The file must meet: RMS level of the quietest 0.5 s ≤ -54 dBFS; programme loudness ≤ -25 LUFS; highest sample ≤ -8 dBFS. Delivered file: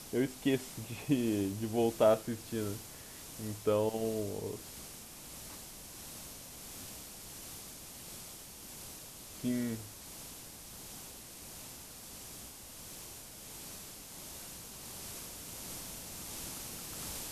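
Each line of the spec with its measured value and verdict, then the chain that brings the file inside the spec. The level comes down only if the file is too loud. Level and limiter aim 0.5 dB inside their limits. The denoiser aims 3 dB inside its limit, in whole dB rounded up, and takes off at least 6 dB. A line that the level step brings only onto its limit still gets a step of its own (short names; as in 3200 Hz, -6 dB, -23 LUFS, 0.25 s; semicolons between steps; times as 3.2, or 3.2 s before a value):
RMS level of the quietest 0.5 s -49 dBFS: fail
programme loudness -38.5 LUFS: OK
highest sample -14.5 dBFS: OK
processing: denoiser 8 dB, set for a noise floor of -49 dBFS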